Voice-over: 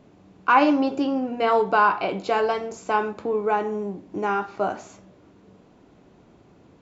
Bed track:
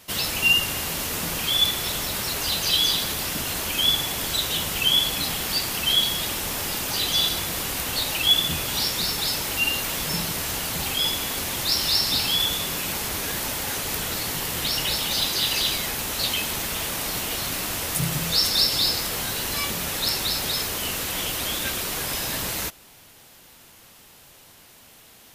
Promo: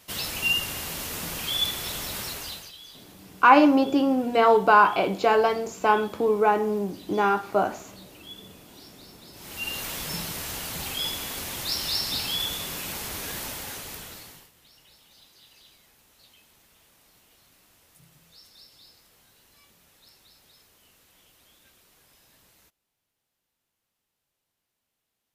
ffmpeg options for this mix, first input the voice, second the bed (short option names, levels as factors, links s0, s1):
-filter_complex "[0:a]adelay=2950,volume=1.26[s0];[1:a]volume=5.01,afade=t=out:st=2.21:d=0.51:silence=0.1,afade=t=in:st=9.33:d=0.5:silence=0.105925,afade=t=out:st=13.4:d=1.11:silence=0.0501187[s1];[s0][s1]amix=inputs=2:normalize=0"